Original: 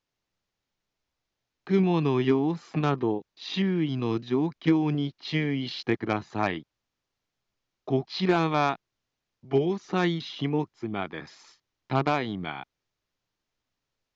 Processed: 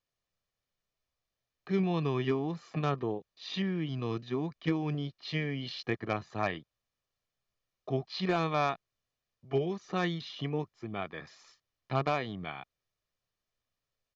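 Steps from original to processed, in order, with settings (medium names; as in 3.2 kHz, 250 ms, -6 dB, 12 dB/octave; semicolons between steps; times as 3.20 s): comb 1.7 ms, depth 39%; trim -5.5 dB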